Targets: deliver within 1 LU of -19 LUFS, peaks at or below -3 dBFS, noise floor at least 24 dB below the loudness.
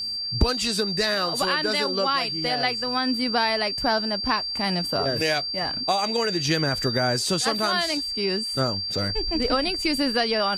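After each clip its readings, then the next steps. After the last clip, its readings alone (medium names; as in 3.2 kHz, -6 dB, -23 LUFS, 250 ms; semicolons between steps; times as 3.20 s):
tick rate 24 per s; steady tone 4.7 kHz; tone level -27 dBFS; loudness -23.0 LUFS; peak level -6.5 dBFS; loudness target -19.0 LUFS
-> de-click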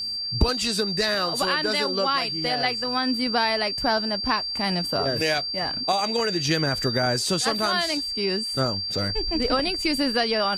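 tick rate 0.095 per s; steady tone 4.7 kHz; tone level -27 dBFS
-> band-stop 4.7 kHz, Q 30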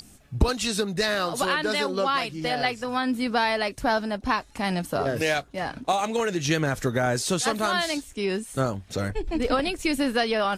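steady tone not found; loudness -25.5 LUFS; peak level -7.5 dBFS; loudness target -19.0 LUFS
-> trim +6.5 dB; peak limiter -3 dBFS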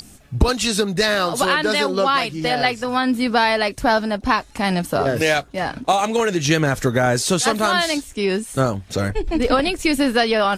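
loudness -19.0 LUFS; peak level -3.0 dBFS; noise floor -45 dBFS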